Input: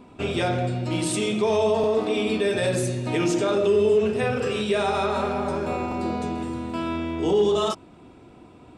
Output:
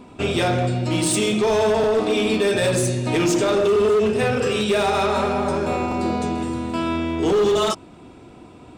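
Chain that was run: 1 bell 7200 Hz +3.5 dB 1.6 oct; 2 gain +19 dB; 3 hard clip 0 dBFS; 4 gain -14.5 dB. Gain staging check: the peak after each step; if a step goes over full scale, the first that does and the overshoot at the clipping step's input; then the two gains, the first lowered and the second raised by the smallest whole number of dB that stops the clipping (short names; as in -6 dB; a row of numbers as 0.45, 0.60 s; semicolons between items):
-11.0, +8.0, 0.0, -14.5 dBFS; step 2, 8.0 dB; step 2 +11 dB, step 4 -6.5 dB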